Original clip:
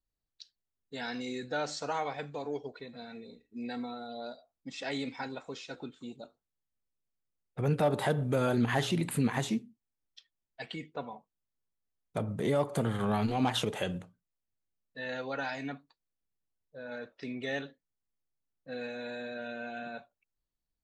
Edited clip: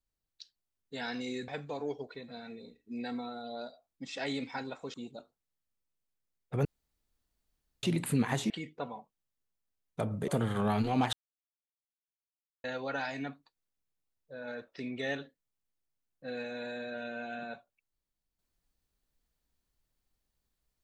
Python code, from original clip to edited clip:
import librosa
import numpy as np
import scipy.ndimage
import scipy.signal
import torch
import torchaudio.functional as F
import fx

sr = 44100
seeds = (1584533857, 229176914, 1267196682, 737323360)

y = fx.edit(x, sr, fx.cut(start_s=1.48, length_s=0.65),
    fx.cut(start_s=5.59, length_s=0.4),
    fx.room_tone_fill(start_s=7.7, length_s=1.18),
    fx.cut(start_s=9.55, length_s=1.12),
    fx.cut(start_s=12.45, length_s=0.27),
    fx.silence(start_s=13.57, length_s=1.51), tone=tone)